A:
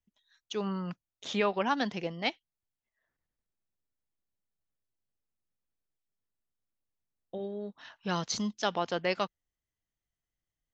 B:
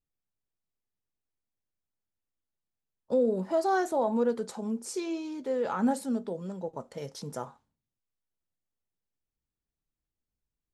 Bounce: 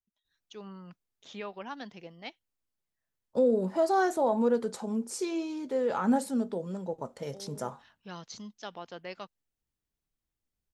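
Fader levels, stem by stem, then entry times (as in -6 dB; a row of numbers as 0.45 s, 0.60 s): -11.5 dB, +1.0 dB; 0.00 s, 0.25 s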